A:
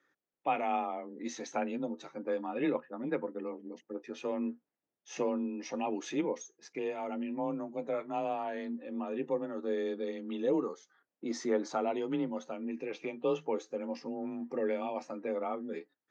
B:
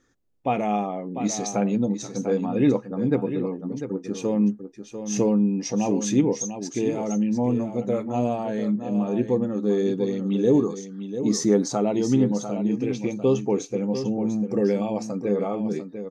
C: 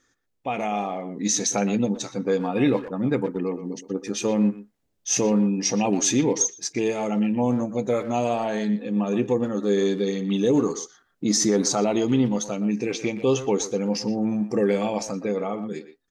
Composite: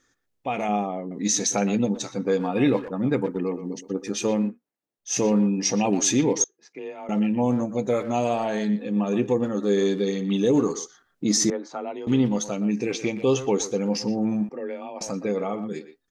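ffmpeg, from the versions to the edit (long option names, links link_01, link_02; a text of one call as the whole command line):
ffmpeg -i take0.wav -i take1.wav -i take2.wav -filter_complex "[0:a]asplit=4[link_01][link_02][link_03][link_04];[2:a]asplit=6[link_05][link_06][link_07][link_08][link_09][link_10];[link_05]atrim=end=0.692[link_11];[1:a]atrim=start=0.688:end=1.112[link_12];[link_06]atrim=start=1.108:end=4.58[link_13];[link_01]atrim=start=4.34:end=5.22[link_14];[link_07]atrim=start=4.98:end=6.442[link_15];[link_02]atrim=start=6.438:end=7.092[link_16];[link_08]atrim=start=7.088:end=11.502[link_17];[link_03]atrim=start=11.498:end=12.072[link_18];[link_09]atrim=start=12.068:end=14.492[link_19];[link_04]atrim=start=14.488:end=15.012[link_20];[link_10]atrim=start=15.008[link_21];[link_11][link_12]acrossfade=duration=0.004:curve1=hsin:curve2=hsin[link_22];[link_22][link_13]acrossfade=duration=0.004:curve1=hsin:curve2=hsin[link_23];[link_23][link_14]acrossfade=duration=0.24:curve1=tri:curve2=tri[link_24];[link_24][link_15]acrossfade=duration=0.24:curve1=tri:curve2=tri[link_25];[link_25][link_16]acrossfade=duration=0.004:curve1=hsin:curve2=hsin[link_26];[link_26][link_17]acrossfade=duration=0.004:curve1=hsin:curve2=hsin[link_27];[link_27][link_18]acrossfade=duration=0.004:curve1=hsin:curve2=hsin[link_28];[link_28][link_19]acrossfade=duration=0.004:curve1=hsin:curve2=hsin[link_29];[link_29][link_20]acrossfade=duration=0.004:curve1=hsin:curve2=hsin[link_30];[link_30][link_21]acrossfade=duration=0.004:curve1=hsin:curve2=hsin" out.wav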